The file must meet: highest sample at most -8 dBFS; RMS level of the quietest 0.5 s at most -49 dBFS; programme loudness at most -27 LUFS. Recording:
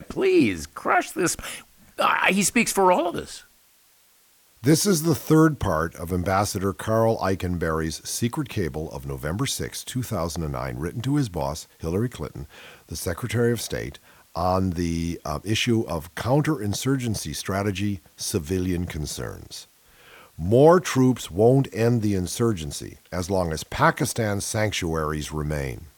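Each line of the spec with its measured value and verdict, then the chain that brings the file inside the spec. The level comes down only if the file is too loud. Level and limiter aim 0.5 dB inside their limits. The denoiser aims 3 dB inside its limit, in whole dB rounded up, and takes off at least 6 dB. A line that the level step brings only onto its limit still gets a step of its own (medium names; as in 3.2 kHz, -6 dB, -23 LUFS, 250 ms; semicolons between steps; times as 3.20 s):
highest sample -4.0 dBFS: fail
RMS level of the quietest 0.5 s -59 dBFS: pass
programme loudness -24.0 LUFS: fail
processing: trim -3.5 dB; peak limiter -8.5 dBFS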